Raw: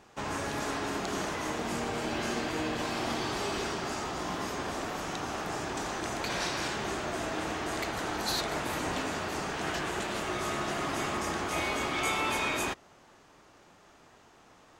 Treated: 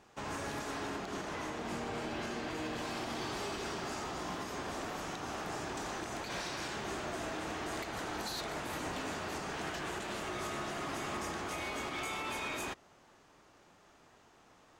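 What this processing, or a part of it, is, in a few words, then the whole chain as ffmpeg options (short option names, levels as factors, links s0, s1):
limiter into clipper: -filter_complex "[0:a]asettb=1/sr,asplit=3[s0][s1][s2];[s0]atrim=end=0.874[s3];[s1]atrim=start=0.87:end=2.55,asetpts=PTS-STARTPTS,afade=t=in:d=0.004:c=qsin,afade=t=out:st=1.676:d=0.004:c=qsin,highshelf=f=6800:g=-7.5[s4];[s2]atrim=start=2.546[s5];[s3][s4]acrossfade=d=0.004:c1=hsin:c2=qsin[s6];[s6][s5]acrossfade=d=0.004:c1=qsin:c2=hsin,alimiter=limit=0.0631:level=0:latency=1:release=129,asoftclip=type=hard:threshold=0.0398,volume=0.596"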